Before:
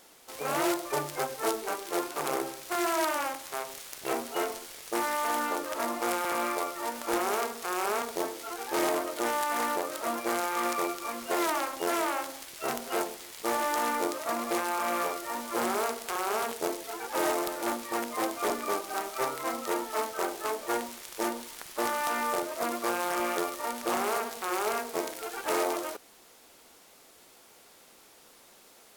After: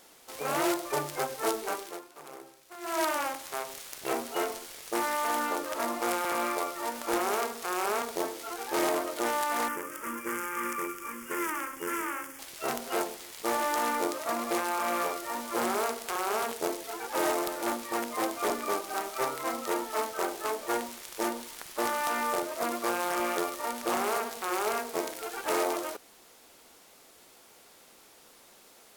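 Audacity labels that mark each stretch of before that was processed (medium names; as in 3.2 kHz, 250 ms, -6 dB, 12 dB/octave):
1.790000	3.010000	dip -15.5 dB, fades 0.20 s
9.680000	12.390000	static phaser centre 1.7 kHz, stages 4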